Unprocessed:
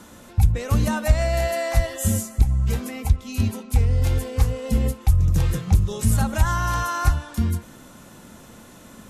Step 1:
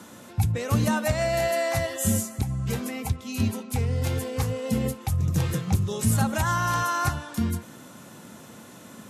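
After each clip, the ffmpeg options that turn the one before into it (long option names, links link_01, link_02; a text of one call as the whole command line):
ffmpeg -i in.wav -af "highpass=frequency=100:width=0.5412,highpass=frequency=100:width=1.3066" out.wav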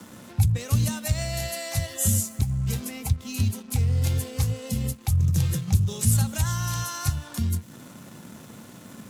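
ffmpeg -i in.wav -filter_complex "[0:a]acrossover=split=150|3000[link_01][link_02][link_03];[link_02]acompressor=threshold=-40dB:ratio=5[link_04];[link_01][link_04][link_03]amix=inputs=3:normalize=0,acrossover=split=250[link_05][link_06];[link_06]aeval=exprs='sgn(val(0))*max(abs(val(0))-0.00266,0)':channel_layout=same[link_07];[link_05][link_07]amix=inputs=2:normalize=0,volume=4.5dB" out.wav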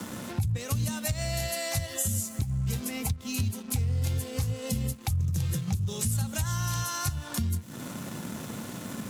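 ffmpeg -i in.wav -af "alimiter=limit=-15dB:level=0:latency=1:release=138,acompressor=threshold=-38dB:ratio=2.5,volume=7dB" out.wav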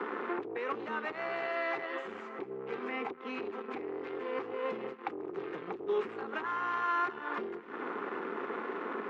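ffmpeg -i in.wav -af "asoftclip=type=tanh:threshold=-26.5dB,aeval=exprs='0.0473*(cos(1*acos(clip(val(0)/0.0473,-1,1)))-cos(1*PI/2))+0.00668*(cos(4*acos(clip(val(0)/0.0473,-1,1)))-cos(4*PI/2))':channel_layout=same,highpass=frequency=360:width=0.5412,highpass=frequency=360:width=1.3066,equalizer=frequency=400:width_type=q:width=4:gain=9,equalizer=frequency=600:width_type=q:width=4:gain=-10,equalizer=frequency=1200:width_type=q:width=4:gain=5,lowpass=frequency=2100:width=0.5412,lowpass=frequency=2100:width=1.3066,volume=6dB" out.wav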